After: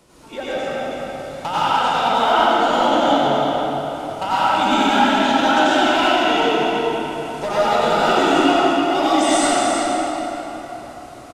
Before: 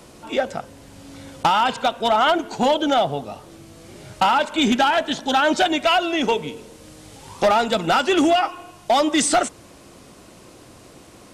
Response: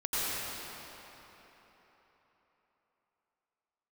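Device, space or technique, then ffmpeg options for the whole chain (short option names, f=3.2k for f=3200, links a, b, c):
cave: -filter_complex "[0:a]aecho=1:1:327:0.398[a];[1:a]atrim=start_sample=2205[b];[a][b]afir=irnorm=-1:irlink=0,volume=-7dB"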